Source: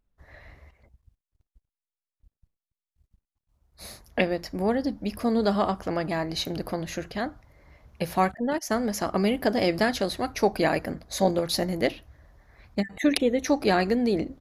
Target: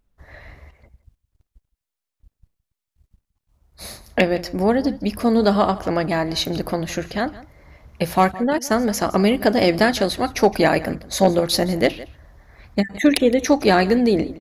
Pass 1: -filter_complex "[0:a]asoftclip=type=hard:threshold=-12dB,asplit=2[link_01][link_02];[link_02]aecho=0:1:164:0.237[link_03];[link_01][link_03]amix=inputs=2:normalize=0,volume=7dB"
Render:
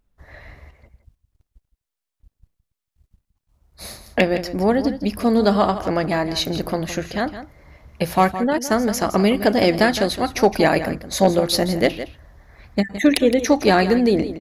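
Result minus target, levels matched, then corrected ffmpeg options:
echo-to-direct +6.5 dB
-filter_complex "[0:a]asoftclip=type=hard:threshold=-12dB,asplit=2[link_01][link_02];[link_02]aecho=0:1:164:0.112[link_03];[link_01][link_03]amix=inputs=2:normalize=0,volume=7dB"

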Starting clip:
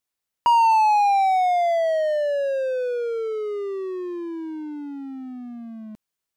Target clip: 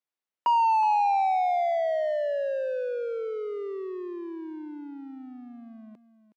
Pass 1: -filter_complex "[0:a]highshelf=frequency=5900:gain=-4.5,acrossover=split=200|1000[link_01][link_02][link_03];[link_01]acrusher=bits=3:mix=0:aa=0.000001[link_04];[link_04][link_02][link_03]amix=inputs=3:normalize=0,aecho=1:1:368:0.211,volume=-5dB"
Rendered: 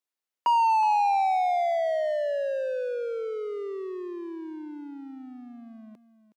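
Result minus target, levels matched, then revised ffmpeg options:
8,000 Hz band +6.0 dB
-filter_complex "[0:a]highshelf=frequency=5900:gain=-16,acrossover=split=200|1000[link_01][link_02][link_03];[link_01]acrusher=bits=3:mix=0:aa=0.000001[link_04];[link_04][link_02][link_03]amix=inputs=3:normalize=0,aecho=1:1:368:0.211,volume=-5dB"

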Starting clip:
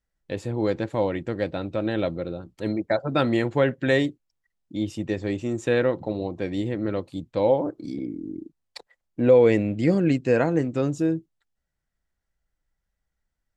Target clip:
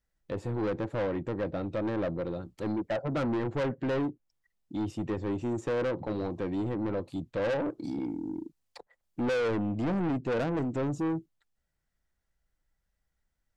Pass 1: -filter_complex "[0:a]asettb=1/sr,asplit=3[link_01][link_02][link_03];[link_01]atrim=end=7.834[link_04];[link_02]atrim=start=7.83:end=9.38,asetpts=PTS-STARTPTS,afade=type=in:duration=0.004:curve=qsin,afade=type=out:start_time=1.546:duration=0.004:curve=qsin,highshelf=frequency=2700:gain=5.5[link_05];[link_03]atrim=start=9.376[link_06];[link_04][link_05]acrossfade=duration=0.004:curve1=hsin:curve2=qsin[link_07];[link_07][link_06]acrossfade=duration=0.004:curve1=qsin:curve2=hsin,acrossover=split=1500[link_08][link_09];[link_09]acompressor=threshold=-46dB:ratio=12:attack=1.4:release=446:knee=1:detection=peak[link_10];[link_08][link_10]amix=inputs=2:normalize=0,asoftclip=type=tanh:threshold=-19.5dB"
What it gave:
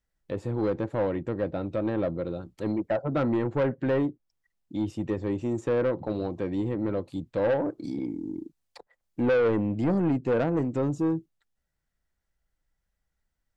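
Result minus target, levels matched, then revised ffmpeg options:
soft clipping: distortion −5 dB
-filter_complex "[0:a]asettb=1/sr,asplit=3[link_01][link_02][link_03];[link_01]atrim=end=7.834[link_04];[link_02]atrim=start=7.83:end=9.38,asetpts=PTS-STARTPTS,afade=type=in:duration=0.004:curve=qsin,afade=type=out:start_time=1.546:duration=0.004:curve=qsin,highshelf=frequency=2700:gain=5.5[link_05];[link_03]atrim=start=9.376[link_06];[link_04][link_05]acrossfade=duration=0.004:curve1=hsin:curve2=qsin[link_07];[link_07][link_06]acrossfade=duration=0.004:curve1=qsin:curve2=hsin,acrossover=split=1500[link_08][link_09];[link_09]acompressor=threshold=-46dB:ratio=12:attack=1.4:release=446:knee=1:detection=peak[link_10];[link_08][link_10]amix=inputs=2:normalize=0,asoftclip=type=tanh:threshold=-26.5dB"

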